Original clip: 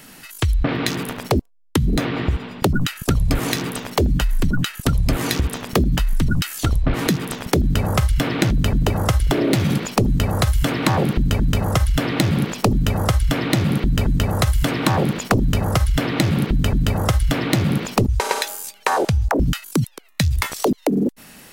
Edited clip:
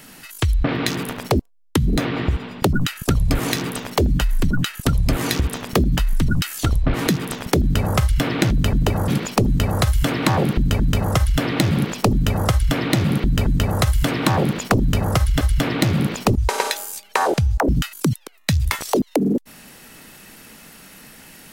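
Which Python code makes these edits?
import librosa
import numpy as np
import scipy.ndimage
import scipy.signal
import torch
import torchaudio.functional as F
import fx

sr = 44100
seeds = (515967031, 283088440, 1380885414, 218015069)

y = fx.edit(x, sr, fx.cut(start_s=9.08, length_s=0.6),
    fx.cut(start_s=16.01, length_s=1.11), tone=tone)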